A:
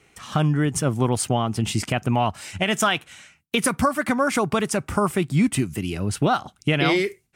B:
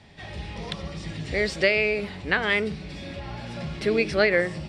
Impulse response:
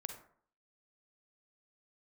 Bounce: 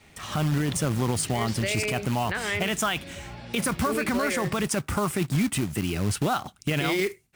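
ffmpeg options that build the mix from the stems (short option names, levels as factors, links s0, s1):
-filter_complex "[0:a]adynamicequalizer=threshold=0.0282:dfrequency=540:dqfactor=0.84:tfrequency=540:tqfactor=0.84:attack=5:release=100:ratio=0.375:range=1.5:mode=cutabove:tftype=bell,acrusher=bits=3:mode=log:mix=0:aa=0.000001,volume=1.12[s0];[1:a]volume=0.562[s1];[s0][s1]amix=inputs=2:normalize=0,alimiter=limit=0.141:level=0:latency=1:release=21"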